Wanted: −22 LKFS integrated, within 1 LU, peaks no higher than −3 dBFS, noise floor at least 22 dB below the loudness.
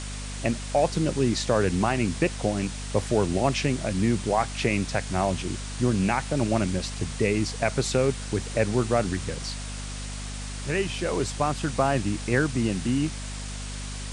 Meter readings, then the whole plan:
mains hum 50 Hz; hum harmonics up to 250 Hz; level of the hum −33 dBFS; background noise floor −35 dBFS; target noise floor −49 dBFS; integrated loudness −26.5 LKFS; sample peak −8.5 dBFS; target loudness −22.0 LKFS
→ mains-hum notches 50/100/150/200/250 Hz
broadband denoise 14 dB, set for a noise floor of −35 dBFS
level +4.5 dB

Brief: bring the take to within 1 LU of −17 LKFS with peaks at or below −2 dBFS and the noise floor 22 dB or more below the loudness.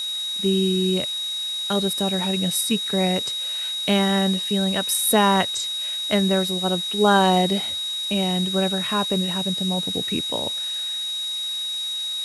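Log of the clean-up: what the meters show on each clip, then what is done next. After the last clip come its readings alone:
interfering tone 3,800 Hz; level of the tone −25 dBFS; background noise floor −28 dBFS; target noise floor −44 dBFS; integrated loudness −21.5 LKFS; sample peak −3.5 dBFS; target loudness −17.0 LKFS
→ notch filter 3,800 Hz, Q 30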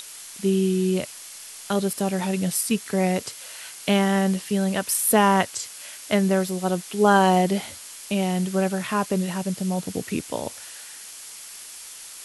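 interfering tone none found; background noise floor −41 dBFS; target noise floor −45 dBFS
→ noise reduction from a noise print 6 dB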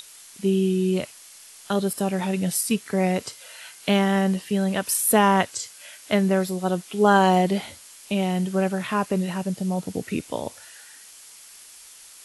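background noise floor −47 dBFS; integrated loudness −23.5 LKFS; sample peak −4.0 dBFS; target loudness −17.0 LKFS
→ level +6.5 dB
brickwall limiter −2 dBFS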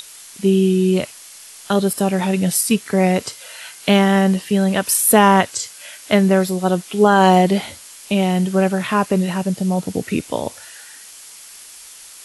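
integrated loudness −17.0 LKFS; sample peak −2.0 dBFS; background noise floor −40 dBFS

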